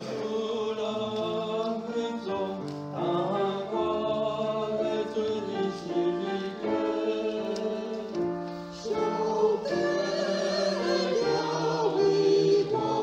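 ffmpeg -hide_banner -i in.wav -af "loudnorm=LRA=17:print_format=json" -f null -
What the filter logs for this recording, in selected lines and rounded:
"input_i" : "-27.9",
"input_tp" : "-13.7",
"input_lra" : "4.9",
"input_thresh" : "-37.9",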